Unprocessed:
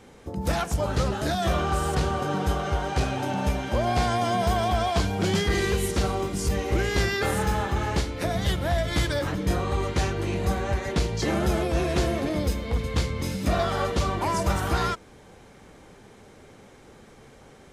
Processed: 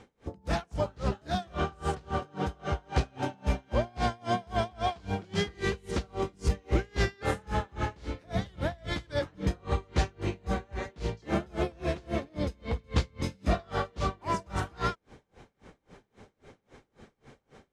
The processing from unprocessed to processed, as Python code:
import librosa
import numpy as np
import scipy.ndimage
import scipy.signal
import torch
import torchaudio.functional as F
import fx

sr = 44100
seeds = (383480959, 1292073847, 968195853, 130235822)

y = fx.air_absorb(x, sr, metres=63.0)
y = y * 10.0 ** (-31 * (0.5 - 0.5 * np.cos(2.0 * np.pi * 3.7 * np.arange(len(y)) / sr)) / 20.0)